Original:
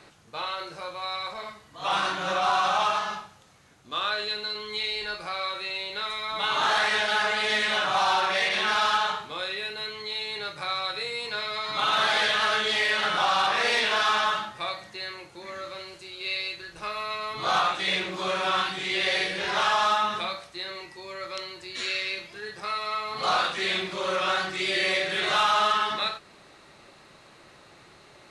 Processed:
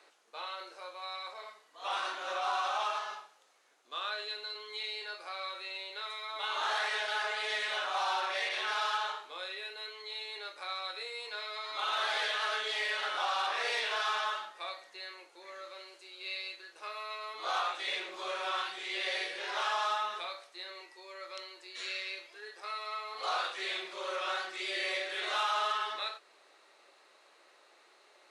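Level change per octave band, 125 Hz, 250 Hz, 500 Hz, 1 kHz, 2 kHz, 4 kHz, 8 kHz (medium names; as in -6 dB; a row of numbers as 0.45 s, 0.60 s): under -35 dB, -16.5 dB, -9.5 dB, -9.0 dB, -9.0 dB, -9.0 dB, -9.0 dB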